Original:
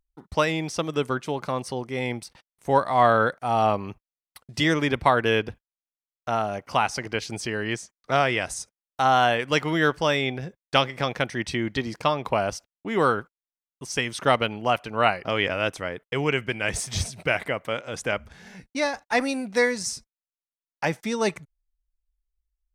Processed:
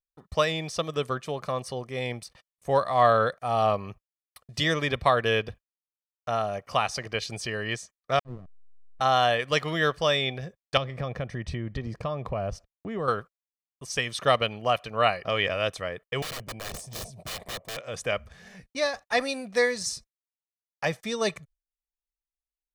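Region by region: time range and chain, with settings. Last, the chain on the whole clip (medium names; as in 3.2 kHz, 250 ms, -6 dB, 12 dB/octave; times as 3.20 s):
8.19–9.01 s: compressor with a negative ratio -25 dBFS, ratio -0.5 + Butterworth band-pass 190 Hz, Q 1.1 + hysteresis with a dead band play -31 dBFS
10.77–13.08 s: tilt EQ -3 dB/octave + compression 2.5:1, threshold -27 dBFS
16.22–17.77 s: FFT filter 920 Hz 0 dB, 1.4 kHz -18 dB, 7.1 kHz -9 dB + integer overflow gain 28.5 dB
whole clip: gate with hold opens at -45 dBFS; dynamic bell 3.9 kHz, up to +6 dB, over -44 dBFS, Q 2.4; comb 1.7 ms, depth 47%; trim -3.5 dB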